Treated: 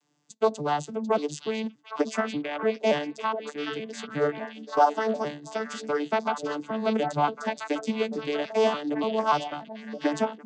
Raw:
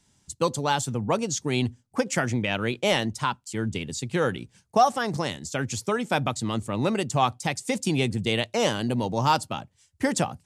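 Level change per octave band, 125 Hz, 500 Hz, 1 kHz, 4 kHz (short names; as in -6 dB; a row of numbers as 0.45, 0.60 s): -12.5, +1.0, -1.0, -7.0 dB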